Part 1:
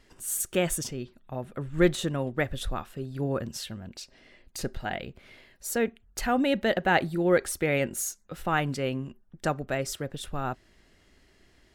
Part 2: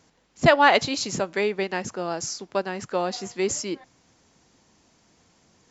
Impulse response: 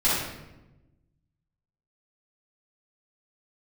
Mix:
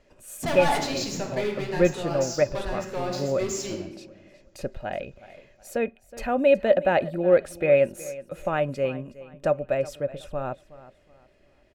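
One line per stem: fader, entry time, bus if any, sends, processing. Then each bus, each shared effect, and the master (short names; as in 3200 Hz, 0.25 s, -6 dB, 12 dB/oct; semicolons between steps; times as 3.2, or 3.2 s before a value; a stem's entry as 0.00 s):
-2.0 dB, 0.00 s, no send, echo send -17.5 dB, high shelf 3100 Hz -9.5 dB; small resonant body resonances 580/2500 Hz, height 17 dB, ringing for 55 ms
-12.5 dB, 0.00 s, send -14 dB, no echo send, sample leveller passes 2; soft clip -14.5 dBFS, distortion -9 dB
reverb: on, RT60 1.0 s, pre-delay 3 ms
echo: feedback echo 0.369 s, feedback 31%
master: dry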